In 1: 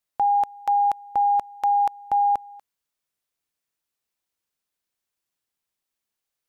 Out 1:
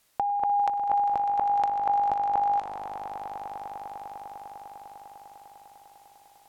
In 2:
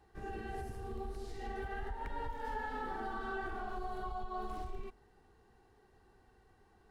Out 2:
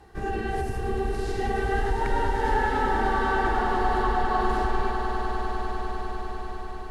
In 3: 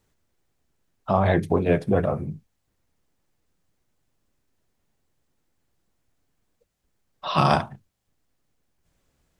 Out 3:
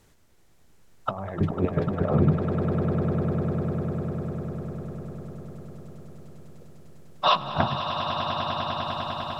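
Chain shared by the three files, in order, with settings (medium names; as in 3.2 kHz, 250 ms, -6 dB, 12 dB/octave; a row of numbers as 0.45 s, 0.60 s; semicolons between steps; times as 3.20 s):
low-pass that closes with the level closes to 1.8 kHz, closed at -21.5 dBFS; compressor with a negative ratio -28 dBFS, ratio -0.5; on a send: echo with a slow build-up 100 ms, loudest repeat 8, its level -11 dB; on the sum: normalise loudness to -27 LUFS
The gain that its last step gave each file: +8.0 dB, +14.0 dB, +4.0 dB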